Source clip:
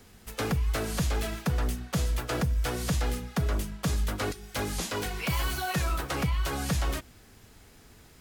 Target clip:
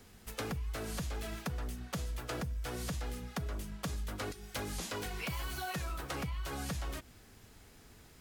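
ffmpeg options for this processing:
-af "acompressor=threshold=-32dB:ratio=6,volume=-3.5dB"

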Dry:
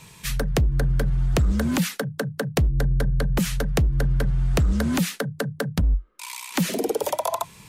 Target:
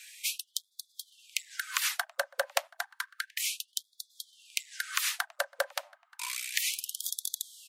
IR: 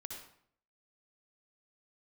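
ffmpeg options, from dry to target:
-filter_complex "[0:a]asplit=2[a][b];[b]adelay=729,lowpass=f=2.4k:p=1,volume=-23dB,asplit=2[c][d];[d]adelay=729,lowpass=f=2.4k:p=1,volume=0.35[e];[a][c][e]amix=inputs=3:normalize=0,afftfilt=real='re*gte(b*sr/1024,510*pow(3400/510,0.5+0.5*sin(2*PI*0.31*pts/sr)))':imag='im*gte(b*sr/1024,510*pow(3400/510,0.5+0.5*sin(2*PI*0.31*pts/sr)))':win_size=1024:overlap=0.75"

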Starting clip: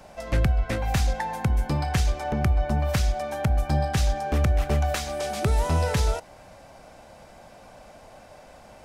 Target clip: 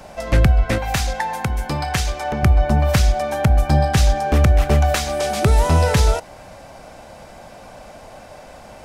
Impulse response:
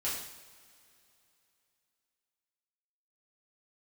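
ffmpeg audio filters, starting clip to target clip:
-filter_complex "[0:a]asettb=1/sr,asplit=3[a][b][c];[a]atrim=end=0.784[d];[b]atrim=start=0.78:end=2.43,asetpts=PTS-STARTPTS,afade=t=in:d=0.004:c=qsin,afade=t=out:st=1.646:d=0.004:c=qsin,lowshelf=f=460:g=-8[e];[c]atrim=start=2.426[f];[d][e]acrossfade=d=0.004:c1=hsin:c2=qsin[g];[g][f]acrossfade=d=0.004:c1=qsin:c2=hsin,volume=8dB"

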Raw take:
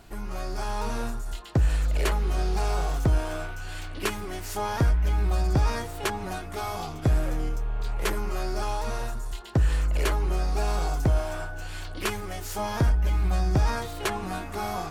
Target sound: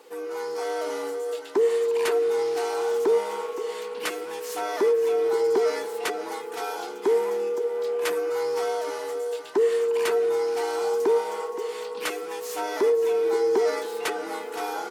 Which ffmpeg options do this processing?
-filter_complex "[0:a]afftfilt=real='real(if(between(b,1,1008),(2*floor((b-1)/24)+1)*24-b,b),0)':imag='imag(if(between(b,1,1008),(2*floor((b-1)/24)+1)*24-b,b),0)*if(between(b,1,1008),-1,1)':win_size=2048:overlap=0.75,highpass=f=310:w=0.5412,highpass=f=310:w=1.3066,asplit=2[a][b];[b]aecho=0:1:520|1040|1560|2080:0.237|0.0854|0.0307|0.0111[c];[a][c]amix=inputs=2:normalize=0"

